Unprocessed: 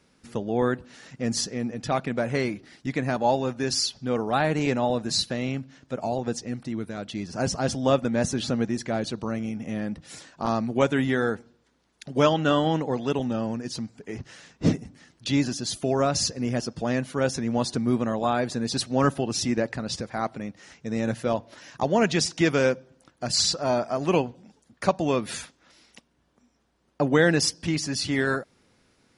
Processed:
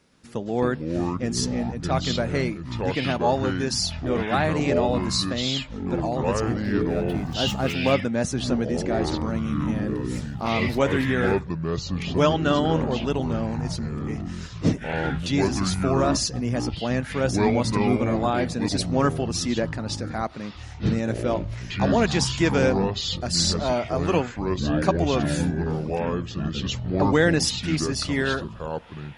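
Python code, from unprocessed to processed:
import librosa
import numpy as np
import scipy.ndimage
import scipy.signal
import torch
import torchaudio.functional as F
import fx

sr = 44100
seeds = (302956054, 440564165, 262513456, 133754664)

y = fx.median_filter(x, sr, points=9, at=(6.4, 7.92))
y = fx.echo_pitch(y, sr, ms=121, semitones=-6, count=3, db_per_echo=-3.0)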